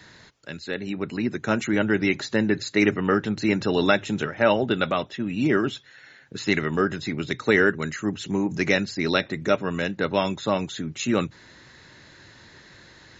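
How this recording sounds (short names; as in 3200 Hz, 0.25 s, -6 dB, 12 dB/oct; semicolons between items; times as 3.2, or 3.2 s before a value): noise floor -51 dBFS; spectral tilt -4.0 dB/oct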